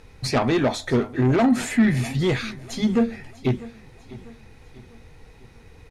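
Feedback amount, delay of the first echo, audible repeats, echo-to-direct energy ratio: 45%, 0.647 s, 3, -18.0 dB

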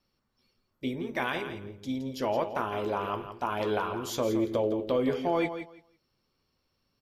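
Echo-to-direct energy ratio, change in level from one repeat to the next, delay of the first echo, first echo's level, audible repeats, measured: -10.0 dB, -15.0 dB, 0.168 s, -10.0 dB, 2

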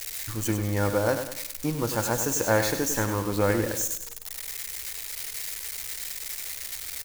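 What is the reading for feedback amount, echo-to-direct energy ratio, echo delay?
41%, -7.5 dB, 99 ms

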